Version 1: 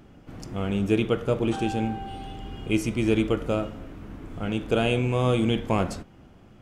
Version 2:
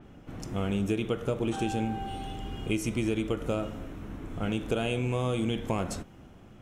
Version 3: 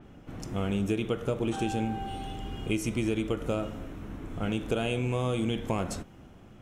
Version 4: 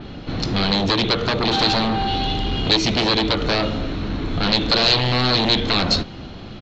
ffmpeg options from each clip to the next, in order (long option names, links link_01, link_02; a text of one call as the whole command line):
ffmpeg -i in.wav -af "bandreject=frequency=4700:width=9.2,acompressor=threshold=-25dB:ratio=6,adynamicequalizer=threshold=0.002:dfrequency=4700:dqfactor=0.7:tfrequency=4700:tqfactor=0.7:attack=5:release=100:ratio=0.375:range=2.5:mode=boostabove:tftype=highshelf" out.wav
ffmpeg -i in.wav -af anull out.wav
ffmpeg -i in.wav -af "aresample=16000,aeval=exprs='0.178*sin(PI/2*5.01*val(0)/0.178)':channel_layout=same,aresample=44100,lowpass=frequency=4200:width_type=q:width=9,volume=-2dB" out.wav